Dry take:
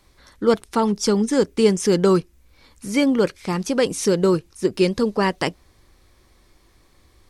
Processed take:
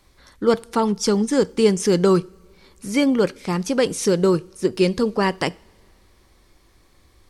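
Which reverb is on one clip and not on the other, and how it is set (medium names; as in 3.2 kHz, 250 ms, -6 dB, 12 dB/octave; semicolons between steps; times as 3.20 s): two-slope reverb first 0.42 s, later 2.6 s, from -19 dB, DRR 19.5 dB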